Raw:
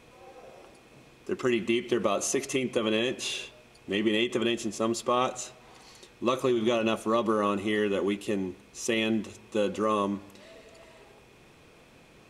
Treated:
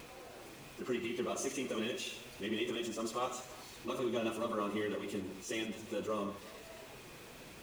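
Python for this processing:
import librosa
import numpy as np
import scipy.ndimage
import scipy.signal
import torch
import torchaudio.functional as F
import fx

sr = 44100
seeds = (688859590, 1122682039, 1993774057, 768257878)

y = x + 0.5 * 10.0 ** (-37.0 / 20.0) * np.sign(x)
y = fx.echo_multitap(y, sr, ms=(93, 96, 141, 244, 559), db=(-11.5, -16.5, -14.5, -13.5, -20.0))
y = fx.stretch_vocoder_free(y, sr, factor=0.62)
y = y * librosa.db_to_amplitude(-8.0)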